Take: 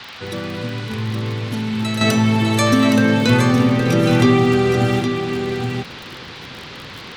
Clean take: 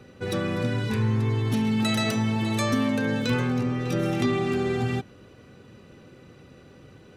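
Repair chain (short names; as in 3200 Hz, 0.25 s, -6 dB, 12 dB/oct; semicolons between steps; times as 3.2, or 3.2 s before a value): de-click; noise print and reduce 15 dB; inverse comb 0.817 s -6.5 dB; gain 0 dB, from 2.01 s -9.5 dB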